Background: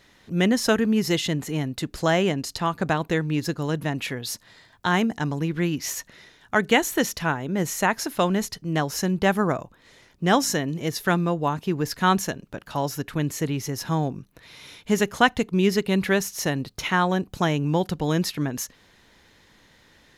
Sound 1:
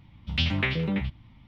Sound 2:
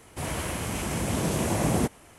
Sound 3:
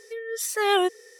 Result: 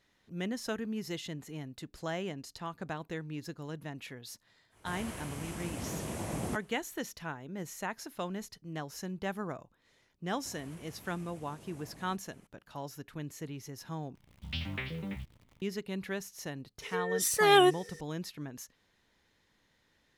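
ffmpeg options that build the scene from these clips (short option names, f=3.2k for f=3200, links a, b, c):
-filter_complex "[2:a]asplit=2[a][b];[0:a]volume=-15.5dB[c];[b]acompressor=threshold=-38dB:ratio=6:attack=3.2:release=140:knee=1:detection=peak[d];[1:a]acrusher=bits=9:dc=4:mix=0:aa=0.000001[e];[c]asplit=2[f][g];[f]atrim=end=14.154[h];[e]atrim=end=1.47,asetpts=PTS-STARTPTS,volume=-11.5dB[i];[g]atrim=start=15.616[j];[a]atrim=end=2.18,asetpts=PTS-STARTPTS,volume=-11.5dB,afade=t=in:d=0.1,afade=t=out:st=2.08:d=0.1,adelay=206829S[k];[d]atrim=end=2.18,asetpts=PTS-STARTPTS,volume=-13dB,afade=t=in:d=0.004:c=hsin,afade=t=out:st=2.176:d=0.004:c=hsin,adelay=10290[l];[3:a]atrim=end=1.19,asetpts=PTS-STARTPTS,volume=-0.5dB,afade=t=in:d=0.004:c=hsin,afade=t=out:st=1.186:d=0.004:c=hsin,adelay=16820[m];[h][i]acrossfade=d=0.004:c1=hsin:c2=hsin[n];[n][j]acrossfade=d=0.004:c1=hsin:c2=hsin[o];[o][k][l][m]amix=inputs=4:normalize=0"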